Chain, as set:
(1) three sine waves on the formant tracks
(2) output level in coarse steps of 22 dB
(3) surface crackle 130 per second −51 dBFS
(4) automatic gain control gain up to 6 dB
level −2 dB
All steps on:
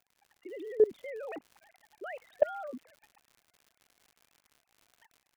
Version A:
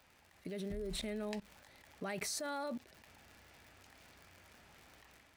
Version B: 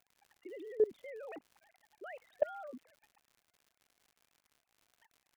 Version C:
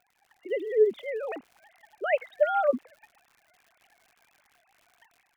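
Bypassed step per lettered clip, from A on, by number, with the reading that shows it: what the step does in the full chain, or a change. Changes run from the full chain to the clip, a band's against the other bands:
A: 1, 500 Hz band −12.0 dB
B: 4, change in integrated loudness −5.0 LU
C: 2, change in crest factor −6.0 dB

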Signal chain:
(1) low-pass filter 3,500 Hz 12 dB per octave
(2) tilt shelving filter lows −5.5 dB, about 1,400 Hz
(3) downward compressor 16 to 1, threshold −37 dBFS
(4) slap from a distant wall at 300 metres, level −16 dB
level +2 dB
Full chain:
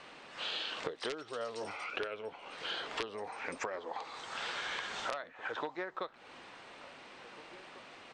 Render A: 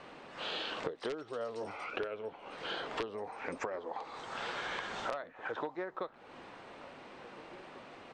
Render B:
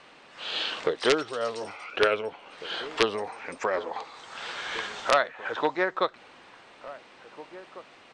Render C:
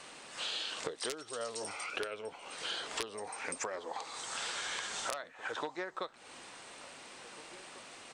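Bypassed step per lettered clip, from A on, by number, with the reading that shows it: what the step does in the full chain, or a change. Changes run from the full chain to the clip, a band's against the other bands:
2, 8 kHz band −6.5 dB
3, average gain reduction 5.0 dB
1, change in crest factor +3.0 dB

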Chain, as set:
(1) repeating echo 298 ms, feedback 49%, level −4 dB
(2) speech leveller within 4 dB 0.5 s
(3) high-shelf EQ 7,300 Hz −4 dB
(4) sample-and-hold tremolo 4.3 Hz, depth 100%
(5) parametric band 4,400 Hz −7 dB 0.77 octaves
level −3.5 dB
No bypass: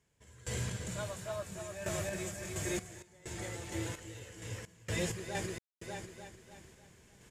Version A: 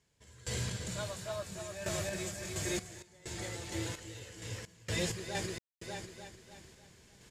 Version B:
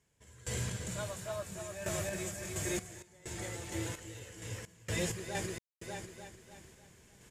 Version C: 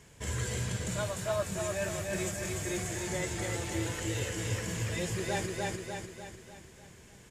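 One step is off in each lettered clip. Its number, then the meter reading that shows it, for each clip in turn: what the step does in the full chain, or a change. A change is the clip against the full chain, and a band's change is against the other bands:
5, 4 kHz band +4.5 dB
3, 8 kHz band +2.0 dB
4, change in momentary loudness spread −2 LU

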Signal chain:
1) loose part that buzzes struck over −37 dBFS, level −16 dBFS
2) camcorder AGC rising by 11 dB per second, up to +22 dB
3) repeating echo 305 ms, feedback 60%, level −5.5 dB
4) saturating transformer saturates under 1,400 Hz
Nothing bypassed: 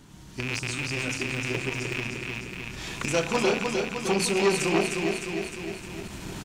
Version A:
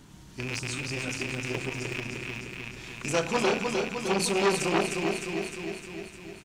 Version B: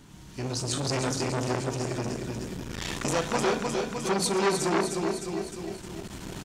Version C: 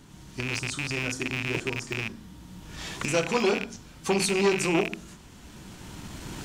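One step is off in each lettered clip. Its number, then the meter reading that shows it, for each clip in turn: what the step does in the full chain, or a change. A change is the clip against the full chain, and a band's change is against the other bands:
2, change in crest factor +1.5 dB
1, 2 kHz band −6.5 dB
3, change in momentary loudness spread +9 LU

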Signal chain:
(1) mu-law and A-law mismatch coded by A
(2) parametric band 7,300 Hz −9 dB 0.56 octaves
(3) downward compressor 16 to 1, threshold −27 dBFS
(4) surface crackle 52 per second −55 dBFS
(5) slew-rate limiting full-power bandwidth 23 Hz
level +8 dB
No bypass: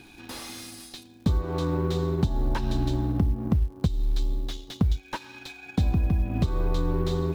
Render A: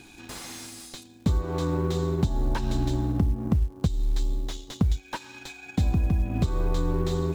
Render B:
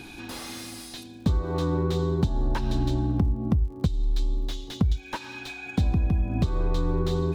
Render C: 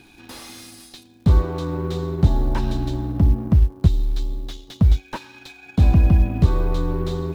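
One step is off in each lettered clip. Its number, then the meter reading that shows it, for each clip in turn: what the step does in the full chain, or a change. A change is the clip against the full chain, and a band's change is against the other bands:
2, 8 kHz band +3.5 dB
1, distortion level −25 dB
3, average gain reduction 3.5 dB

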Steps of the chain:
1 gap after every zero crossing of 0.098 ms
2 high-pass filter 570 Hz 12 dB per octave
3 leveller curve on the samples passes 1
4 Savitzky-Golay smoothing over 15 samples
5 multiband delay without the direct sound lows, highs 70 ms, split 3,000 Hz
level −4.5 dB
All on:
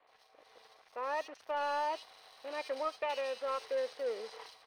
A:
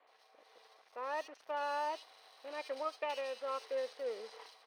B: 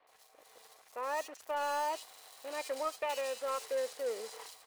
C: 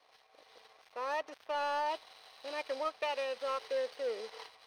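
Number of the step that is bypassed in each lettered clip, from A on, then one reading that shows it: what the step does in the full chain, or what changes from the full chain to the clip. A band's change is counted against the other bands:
3, change in integrated loudness −3.0 LU
4, 8 kHz band +11.5 dB
5, echo-to-direct ratio −13.5 dB to none audible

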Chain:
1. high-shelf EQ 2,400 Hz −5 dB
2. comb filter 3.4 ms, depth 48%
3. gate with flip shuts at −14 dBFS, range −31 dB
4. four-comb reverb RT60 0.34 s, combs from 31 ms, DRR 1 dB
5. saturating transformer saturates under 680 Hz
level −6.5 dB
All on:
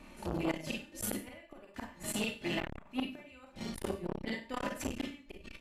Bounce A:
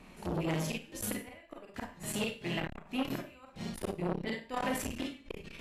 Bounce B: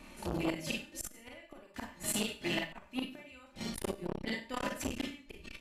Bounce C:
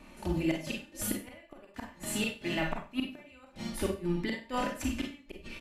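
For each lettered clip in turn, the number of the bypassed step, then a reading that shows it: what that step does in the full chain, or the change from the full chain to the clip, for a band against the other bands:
2, change in crest factor −1.5 dB
1, 4 kHz band +3.0 dB
5, change in crest factor −3.5 dB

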